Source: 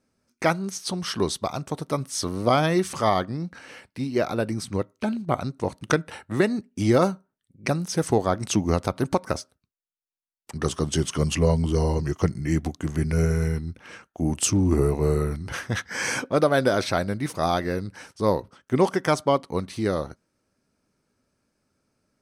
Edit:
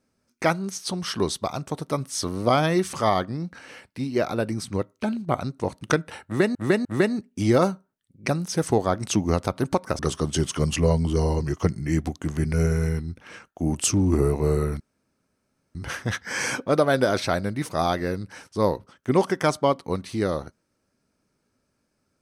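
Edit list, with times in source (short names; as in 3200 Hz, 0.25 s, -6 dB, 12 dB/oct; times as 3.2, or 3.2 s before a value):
6.25–6.55 loop, 3 plays
9.39–10.58 cut
15.39 insert room tone 0.95 s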